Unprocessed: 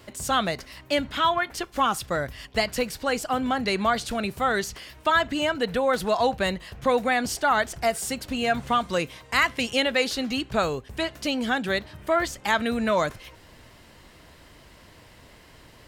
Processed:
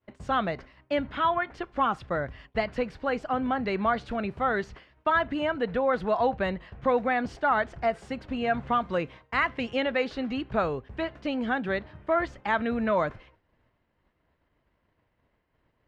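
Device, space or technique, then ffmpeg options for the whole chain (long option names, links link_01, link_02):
hearing-loss simulation: -af "lowpass=2000,agate=range=-33dB:threshold=-39dB:ratio=3:detection=peak,volume=-2dB"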